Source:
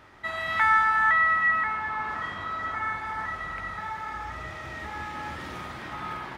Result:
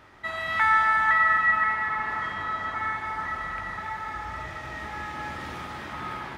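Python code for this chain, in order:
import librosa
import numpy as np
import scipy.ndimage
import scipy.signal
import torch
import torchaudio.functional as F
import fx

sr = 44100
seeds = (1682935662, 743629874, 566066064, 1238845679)

y = fx.echo_split(x, sr, split_hz=1600.0, low_ms=490, high_ms=280, feedback_pct=52, wet_db=-8)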